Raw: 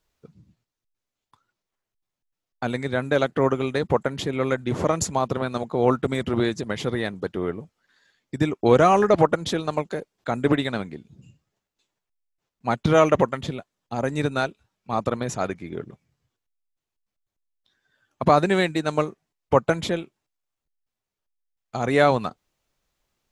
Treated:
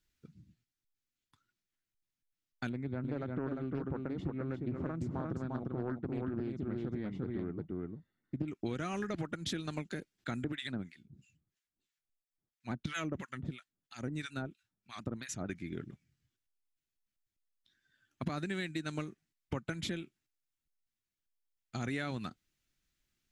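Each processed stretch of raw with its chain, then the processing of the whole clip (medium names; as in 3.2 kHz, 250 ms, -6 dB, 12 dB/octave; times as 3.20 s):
2.69–8.48 s: Savitzky-Golay filter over 65 samples + delay 350 ms -3.5 dB + loudspeaker Doppler distortion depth 0.44 ms
10.44–15.49 s: harmonic tremolo 3 Hz, depth 100%, crossover 1.1 kHz + vibrato with a chosen wave saw down 4.4 Hz, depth 100 cents
whole clip: high-order bell 700 Hz -12 dB; compression 10:1, threshold -28 dBFS; trim -5 dB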